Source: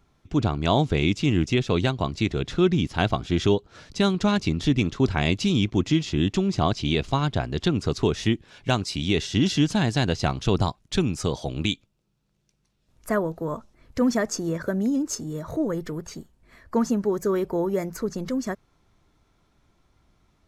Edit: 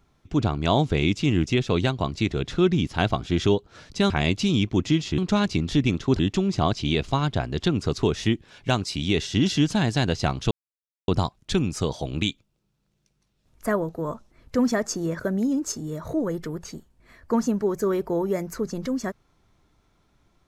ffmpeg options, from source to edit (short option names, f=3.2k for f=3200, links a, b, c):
-filter_complex "[0:a]asplit=5[a][b][c][d][e];[a]atrim=end=4.102[f];[b]atrim=start=5.108:end=6.192[g];[c]atrim=start=4.098:end=5.112[h];[d]atrim=start=6.188:end=10.51,asetpts=PTS-STARTPTS,afade=t=out:st=4.318:d=0.004:c=hsin,apad=pad_dur=0.57[i];[e]atrim=start=10.51,asetpts=PTS-STARTPTS,afade=t=in:d=0.004:c=hsin[j];[f][g]acrossfade=d=0.004:c1=hsin:c2=hsin[k];[k][h]acrossfade=d=0.004:c1=hsin:c2=hsin[l];[i][j]concat=n=2:v=0:a=1[m];[l][m]acrossfade=d=0.004:c1=hsin:c2=hsin"